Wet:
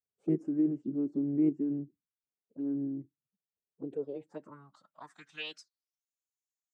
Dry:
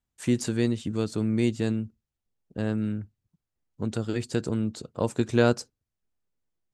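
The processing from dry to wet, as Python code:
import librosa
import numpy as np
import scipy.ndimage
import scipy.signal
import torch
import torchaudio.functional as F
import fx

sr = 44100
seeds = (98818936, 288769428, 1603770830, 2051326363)

p1 = fx.level_steps(x, sr, step_db=12)
p2 = x + (p1 * librosa.db_to_amplitude(0.5))
p3 = fx.filter_sweep_bandpass(p2, sr, from_hz=320.0, to_hz=6800.0, start_s=3.74, end_s=6.07, q=7.3)
p4 = fx.env_phaser(p3, sr, low_hz=250.0, high_hz=3700.0, full_db=-30.5)
p5 = fx.pitch_keep_formants(p4, sr, semitones=4.5)
y = p5 * librosa.db_to_amplitude(2.0)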